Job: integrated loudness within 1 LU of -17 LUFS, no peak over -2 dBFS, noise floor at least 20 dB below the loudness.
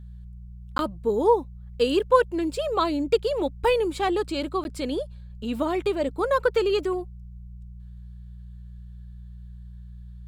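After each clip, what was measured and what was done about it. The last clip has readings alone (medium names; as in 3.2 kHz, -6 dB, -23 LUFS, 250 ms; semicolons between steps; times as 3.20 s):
dropouts 2; longest dropout 11 ms; hum 60 Hz; highest harmonic 180 Hz; hum level -39 dBFS; loudness -25.0 LUFS; peak level -5.5 dBFS; loudness target -17.0 LUFS
-> interpolate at 0.78/4.64 s, 11 ms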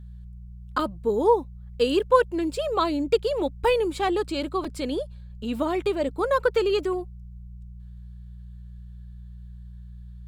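dropouts 0; hum 60 Hz; highest harmonic 180 Hz; hum level -39 dBFS
-> de-hum 60 Hz, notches 3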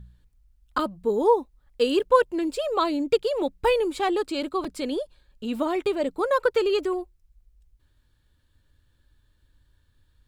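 hum not found; loudness -25.0 LUFS; peak level -6.0 dBFS; loudness target -17.0 LUFS
-> trim +8 dB; peak limiter -2 dBFS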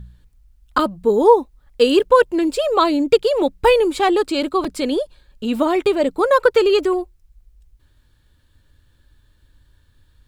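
loudness -17.5 LUFS; peak level -2.0 dBFS; noise floor -58 dBFS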